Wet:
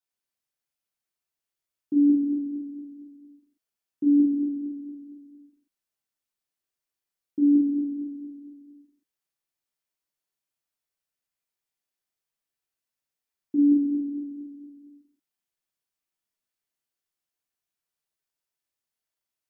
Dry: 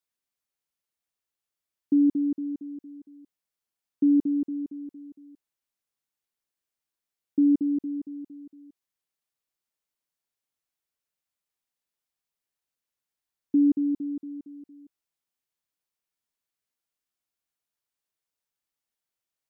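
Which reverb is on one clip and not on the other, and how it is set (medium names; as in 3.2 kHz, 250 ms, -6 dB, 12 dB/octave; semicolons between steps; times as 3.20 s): gated-style reverb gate 340 ms falling, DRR -3.5 dB; trim -5.5 dB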